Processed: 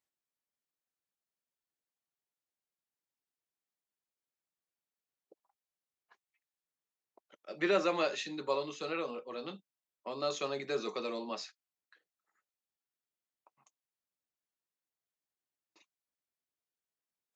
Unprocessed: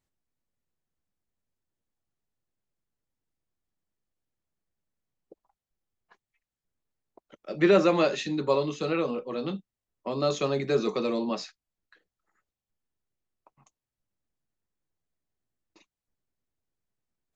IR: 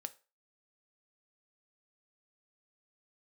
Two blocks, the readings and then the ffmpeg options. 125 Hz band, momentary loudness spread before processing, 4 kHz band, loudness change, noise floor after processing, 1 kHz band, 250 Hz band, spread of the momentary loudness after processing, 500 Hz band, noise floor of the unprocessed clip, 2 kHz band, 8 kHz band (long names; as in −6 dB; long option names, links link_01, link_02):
−17.5 dB, 15 LU, −4.5 dB, −8.5 dB, below −85 dBFS, −6.0 dB, −12.5 dB, 17 LU, −9.0 dB, below −85 dBFS, −5.0 dB, can't be measured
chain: -af "highpass=frequency=670:poles=1,volume=-4.5dB"